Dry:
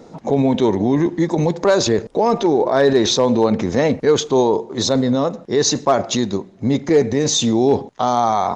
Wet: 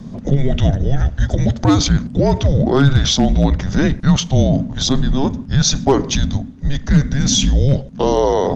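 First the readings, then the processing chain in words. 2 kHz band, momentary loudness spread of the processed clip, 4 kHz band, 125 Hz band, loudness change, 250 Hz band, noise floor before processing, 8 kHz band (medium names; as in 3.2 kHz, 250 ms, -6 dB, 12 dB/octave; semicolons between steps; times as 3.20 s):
+0.5 dB, 5 LU, +2.5 dB, +10.0 dB, +1.0 dB, +1.0 dB, -42 dBFS, +1.5 dB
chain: wind noise 110 Hz -31 dBFS; frequency shift -280 Hz; trim +2 dB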